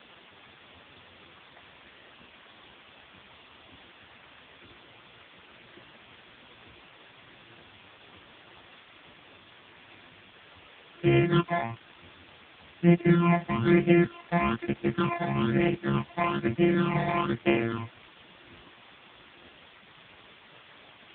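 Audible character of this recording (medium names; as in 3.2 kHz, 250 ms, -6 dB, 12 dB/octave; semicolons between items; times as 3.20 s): a buzz of ramps at a fixed pitch in blocks of 128 samples; phasing stages 8, 1.1 Hz, lowest notch 380–1200 Hz; a quantiser's noise floor 8-bit, dither triangular; AMR-NB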